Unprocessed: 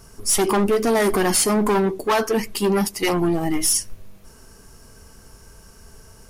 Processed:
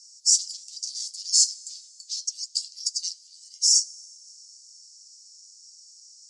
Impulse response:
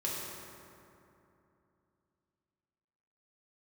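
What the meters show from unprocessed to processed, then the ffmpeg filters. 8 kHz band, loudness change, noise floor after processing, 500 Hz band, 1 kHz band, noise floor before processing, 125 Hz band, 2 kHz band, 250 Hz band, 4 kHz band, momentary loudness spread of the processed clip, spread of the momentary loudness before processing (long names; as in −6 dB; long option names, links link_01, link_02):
+1.0 dB, −3.5 dB, −52 dBFS, below −40 dB, below −40 dB, −48 dBFS, below −40 dB, below −40 dB, below −40 dB, +4.0 dB, 19 LU, 4 LU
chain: -filter_complex "[0:a]asuperpass=centerf=6000:order=8:qfactor=1.8,asplit=2[link_01][link_02];[1:a]atrim=start_sample=2205,asetrate=22932,aresample=44100[link_03];[link_02][link_03]afir=irnorm=-1:irlink=0,volume=-27dB[link_04];[link_01][link_04]amix=inputs=2:normalize=0,volume=6dB"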